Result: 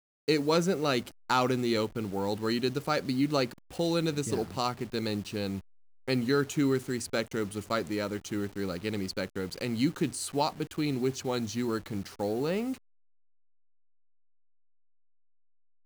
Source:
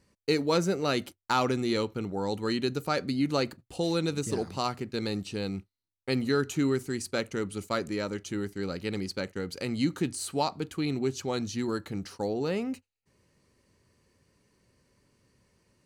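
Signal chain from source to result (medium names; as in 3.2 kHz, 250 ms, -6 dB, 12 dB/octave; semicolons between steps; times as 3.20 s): send-on-delta sampling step -45 dBFS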